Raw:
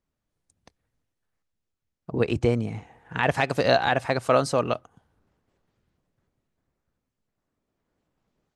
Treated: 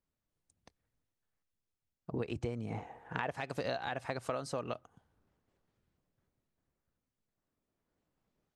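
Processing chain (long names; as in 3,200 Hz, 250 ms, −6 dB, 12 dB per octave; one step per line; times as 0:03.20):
0:02.69–0:03.36: parametric band 660 Hz +13 dB → +5 dB 2.5 octaves
downward compressor 12 to 1, threshold −26 dBFS, peak gain reduction 14.5 dB
level −6.5 dB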